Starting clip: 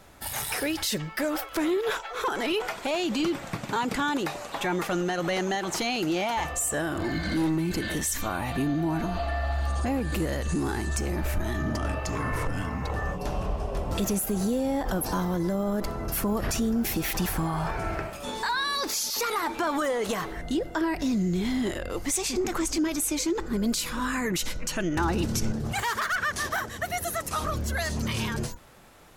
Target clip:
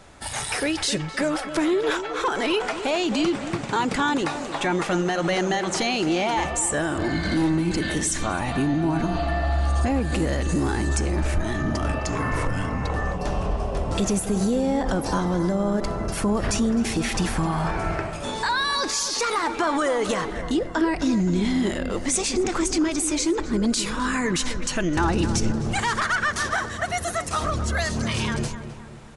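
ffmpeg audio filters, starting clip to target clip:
-filter_complex "[0:a]asplit=2[a][b];[b]adelay=260,lowpass=f=1.9k:p=1,volume=-10.5dB,asplit=2[c][d];[d]adelay=260,lowpass=f=1.9k:p=1,volume=0.51,asplit=2[e][f];[f]adelay=260,lowpass=f=1.9k:p=1,volume=0.51,asplit=2[g][h];[h]adelay=260,lowpass=f=1.9k:p=1,volume=0.51,asplit=2[i][j];[j]adelay=260,lowpass=f=1.9k:p=1,volume=0.51,asplit=2[k][l];[l]adelay=260,lowpass=f=1.9k:p=1,volume=0.51[m];[c][e][g][i][k][m]amix=inputs=6:normalize=0[n];[a][n]amix=inputs=2:normalize=0,aresample=22050,aresample=44100,volume=4dB"

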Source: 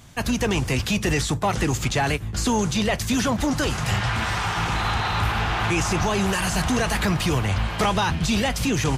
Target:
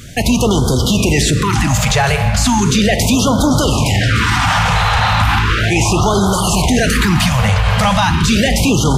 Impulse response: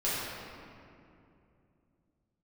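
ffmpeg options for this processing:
-filter_complex "[0:a]asplit=2[a][b];[1:a]atrim=start_sample=2205,adelay=40[c];[b][c]afir=irnorm=-1:irlink=0,volume=-18dB[d];[a][d]amix=inputs=2:normalize=0,alimiter=level_in=17.5dB:limit=-1dB:release=50:level=0:latency=1,afftfilt=real='re*(1-between(b*sr/1024,290*pow(2200/290,0.5+0.5*sin(2*PI*0.36*pts/sr))/1.41,290*pow(2200/290,0.5+0.5*sin(2*PI*0.36*pts/sr))*1.41))':imag='im*(1-between(b*sr/1024,290*pow(2200/290,0.5+0.5*sin(2*PI*0.36*pts/sr))/1.41,290*pow(2200/290,0.5+0.5*sin(2*PI*0.36*pts/sr))*1.41))':win_size=1024:overlap=0.75,volume=-3.5dB"

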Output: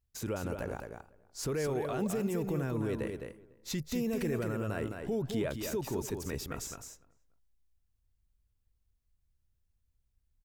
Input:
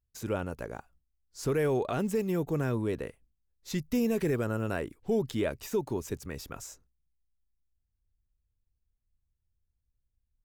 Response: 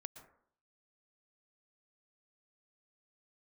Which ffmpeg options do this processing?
-filter_complex "[0:a]asplit=2[a][b];[b]adelay=291,lowpass=f=1.8k:p=1,volume=-23dB,asplit=2[c][d];[d]adelay=291,lowpass=f=1.8k:p=1,volume=0.25[e];[c][e]amix=inputs=2:normalize=0[f];[a][f]amix=inputs=2:normalize=0,alimiter=level_in=4dB:limit=-24dB:level=0:latency=1:release=37,volume=-4dB,asplit=2[g][h];[h]aecho=0:1:211:0.501[i];[g][i]amix=inputs=2:normalize=0,volume=2dB"

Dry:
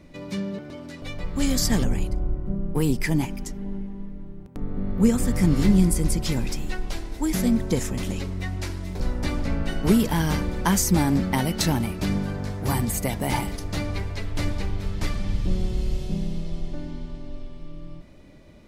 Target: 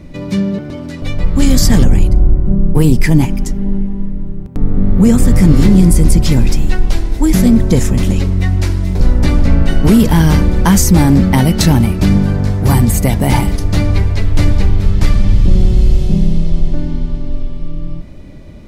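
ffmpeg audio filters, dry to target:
-af "lowshelf=f=240:g=9.5,apsyclip=11dB,volume=-2dB"

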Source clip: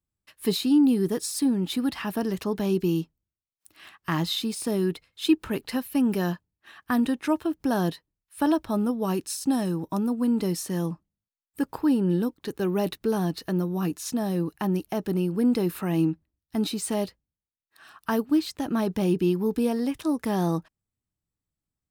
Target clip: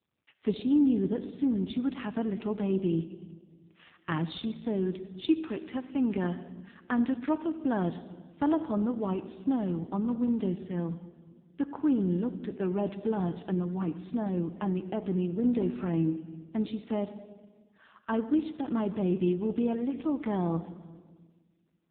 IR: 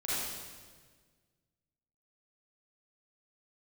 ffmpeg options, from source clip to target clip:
-filter_complex "[0:a]asplit=3[a][b][c];[a]afade=t=out:st=5.31:d=0.02[d];[b]lowshelf=f=180:g=-9,afade=t=in:st=5.31:d=0.02,afade=t=out:st=5.98:d=0.02[e];[c]afade=t=in:st=5.98:d=0.02[f];[d][e][f]amix=inputs=3:normalize=0,asplit=2[g][h];[1:a]atrim=start_sample=2205[i];[h][i]afir=irnorm=-1:irlink=0,volume=-16dB[j];[g][j]amix=inputs=2:normalize=0,volume=-4.5dB" -ar 8000 -c:a libopencore_amrnb -b:a 5900

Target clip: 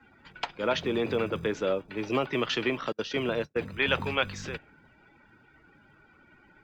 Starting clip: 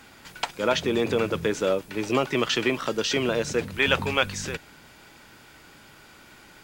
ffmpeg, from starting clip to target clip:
-filter_complex "[0:a]asettb=1/sr,asplit=3[a][b][c];[a]atrim=end=2.924[d];[b]atrim=start=2.92:end=3.56,asetpts=PTS-STARTPTS,afade=t=in:d=0.004:c=qsin,afade=t=out:st=0.636:d=0.004:c=qsin,agate=range=-37dB:threshold=-25dB:ratio=16:detection=peak[e];[c]atrim=start=3.556[f];[d][e]acrossfade=d=0.004:c1=hsin:c2=qsin[g];[g][f]acrossfade=d=0.004:c1=qsin:c2=hsin,lowpass=4.8k,afftdn=nr=20:nf=-49,acrossover=split=130|910[h][i][j];[h]acrusher=samples=36:mix=1:aa=0.000001[k];[k][i][j]amix=inputs=3:normalize=0,volume=-4dB"

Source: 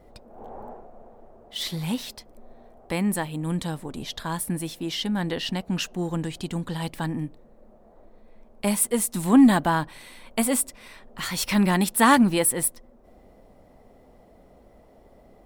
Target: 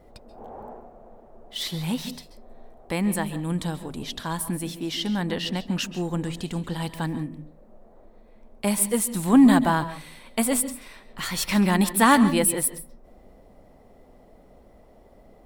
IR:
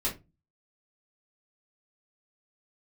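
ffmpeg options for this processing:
-filter_complex "[0:a]asplit=2[a][b];[1:a]atrim=start_sample=2205,adelay=129[c];[b][c]afir=irnorm=-1:irlink=0,volume=-19dB[d];[a][d]amix=inputs=2:normalize=0"

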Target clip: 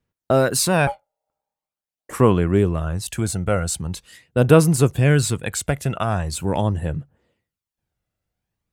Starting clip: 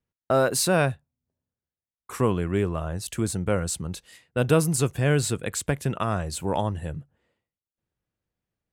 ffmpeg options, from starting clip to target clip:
-filter_complex "[0:a]asettb=1/sr,asplit=3[a][b][c];[a]atrim=end=0.874[d];[b]atrim=start=0.87:end=2.13,asetpts=PTS-STARTPTS,afade=t=in:d=0.004:c=qsin,afade=t=out:st=1.256:d=0.004:c=qsin,aeval=exprs='val(0)*sin(2*PI*700*n/s)':c=same[e];[c]atrim=start=2.126[f];[d][e]acrossfade=d=0.004:c1=hsin:c2=qsin[g];[g][f]acrossfade=d=0.004:c1=qsin:c2=hsin,aphaser=in_gain=1:out_gain=1:delay=1.5:decay=0.39:speed=0.43:type=sinusoidal,volume=3.5dB"

